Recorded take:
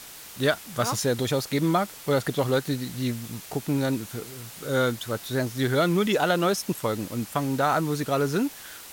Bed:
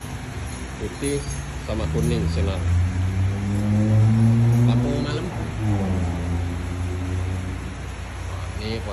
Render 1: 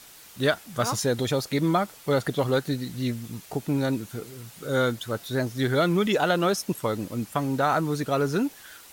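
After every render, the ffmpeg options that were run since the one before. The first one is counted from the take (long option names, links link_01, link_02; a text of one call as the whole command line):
ffmpeg -i in.wav -af "afftdn=noise_reduction=6:noise_floor=-43" out.wav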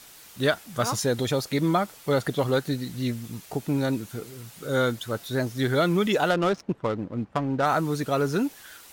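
ffmpeg -i in.wav -filter_complex "[0:a]asettb=1/sr,asplit=3[link_01][link_02][link_03];[link_01]atrim=end=6.304[link_04];[link_02]atrim=start=6.3:end=7.66,asetpts=PTS-STARTPTS,afade=type=in:duration=0.004:curve=qsin,afade=type=out:start_time=1.356:duration=0.004:curve=qsin,adynamicsmooth=sensitivity=3:basefreq=1000[link_05];[link_03]atrim=start=7.656[link_06];[link_04][link_05]acrossfade=duration=0.004:curve1=hsin:curve2=qsin[link_07];[link_07][link_06]acrossfade=duration=0.004:curve1=qsin:curve2=hsin" out.wav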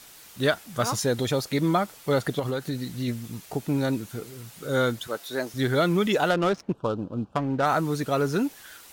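ffmpeg -i in.wav -filter_complex "[0:a]asettb=1/sr,asplit=3[link_01][link_02][link_03];[link_01]atrim=end=2.394[link_04];[link_02]atrim=start=2.39:end=3.08,asetpts=PTS-STARTPTS,afade=type=in:duration=0.004:curve=qsin,afade=type=out:start_time=0.686:duration=0.004:curve=qsin,acompressor=threshold=-24dB:ratio=6:attack=3.2:release=140:knee=1:detection=peak[link_05];[link_03]atrim=start=3.076[link_06];[link_04][link_05]acrossfade=duration=0.004:curve1=hsin:curve2=qsin[link_07];[link_07][link_06]acrossfade=duration=0.004:curve1=qsin:curve2=hsin,asettb=1/sr,asplit=3[link_08][link_09][link_10];[link_08]atrim=end=5.074[link_11];[link_09]atrim=start=5.07:end=5.54,asetpts=PTS-STARTPTS,afade=type=in:duration=0.004:curve=qsin,afade=type=out:start_time=0.466:duration=0.004:curve=qsin,highpass=330[link_12];[link_10]atrim=start=5.536[link_13];[link_11][link_12]acrossfade=duration=0.004:curve1=hsin:curve2=qsin[link_14];[link_14][link_13]acrossfade=duration=0.004:curve1=qsin:curve2=hsin,asettb=1/sr,asplit=3[link_15][link_16][link_17];[link_15]atrim=end=6.734[link_18];[link_16]atrim=start=6.73:end=7.36,asetpts=PTS-STARTPTS,afade=type=in:duration=0.004:curve=qsin,afade=type=out:start_time=0.626:duration=0.004:curve=qsin,asuperstop=centerf=2000:order=4:qfactor=1.7[link_19];[link_17]atrim=start=7.356[link_20];[link_18][link_19]acrossfade=duration=0.004:curve1=hsin:curve2=qsin[link_21];[link_21][link_20]acrossfade=duration=0.004:curve1=qsin:curve2=hsin" out.wav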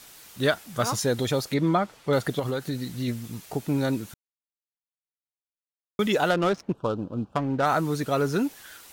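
ffmpeg -i in.wav -filter_complex "[0:a]asettb=1/sr,asplit=3[link_01][link_02][link_03];[link_01]atrim=end=1.544[link_04];[link_02]atrim=start=1.54:end=2.13,asetpts=PTS-STARTPTS,afade=type=in:duration=0.004:curve=qsin,afade=type=out:start_time=0.586:duration=0.004:curve=qsin,aemphasis=mode=reproduction:type=50fm[link_05];[link_03]atrim=start=2.126[link_06];[link_04][link_05]acrossfade=duration=0.004:curve1=hsin:curve2=qsin[link_07];[link_07][link_06]acrossfade=duration=0.004:curve1=qsin:curve2=hsin,asplit=3[link_08][link_09][link_10];[link_08]atrim=end=4.14,asetpts=PTS-STARTPTS,afade=type=out:start_time=4.136:duration=0.004:curve=hsin[link_11];[link_09]atrim=start=4.14:end=5.99,asetpts=PTS-STARTPTS,volume=0[link_12];[link_10]atrim=start=5.99,asetpts=PTS-STARTPTS,afade=type=in:duration=0.004:curve=hsin[link_13];[link_11][link_12][link_13]concat=n=3:v=0:a=1" out.wav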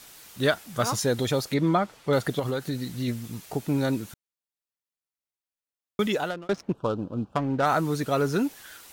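ffmpeg -i in.wav -filter_complex "[0:a]asplit=2[link_01][link_02];[link_01]atrim=end=6.49,asetpts=PTS-STARTPTS,afade=type=out:start_time=6:duration=0.49[link_03];[link_02]atrim=start=6.49,asetpts=PTS-STARTPTS,afade=type=in:duration=0.004:curve=hsin[link_04];[link_03][link_04]concat=n=2:v=0:a=1" out.wav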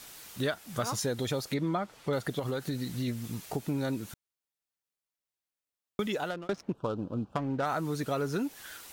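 ffmpeg -i in.wav -af "acompressor=threshold=-31dB:ratio=2.5" out.wav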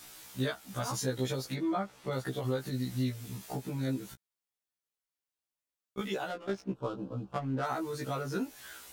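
ffmpeg -i in.wav -af "afftfilt=real='re*1.73*eq(mod(b,3),0)':imag='im*1.73*eq(mod(b,3),0)':win_size=2048:overlap=0.75" out.wav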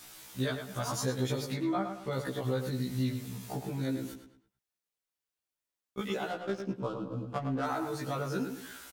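ffmpeg -i in.wav -filter_complex "[0:a]asplit=2[link_01][link_02];[link_02]adelay=108,lowpass=frequency=3900:poles=1,volume=-7dB,asplit=2[link_03][link_04];[link_04]adelay=108,lowpass=frequency=3900:poles=1,volume=0.37,asplit=2[link_05][link_06];[link_06]adelay=108,lowpass=frequency=3900:poles=1,volume=0.37,asplit=2[link_07][link_08];[link_08]adelay=108,lowpass=frequency=3900:poles=1,volume=0.37[link_09];[link_01][link_03][link_05][link_07][link_09]amix=inputs=5:normalize=0" out.wav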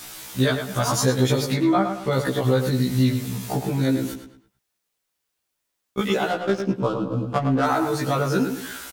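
ffmpeg -i in.wav -af "volume=12dB" out.wav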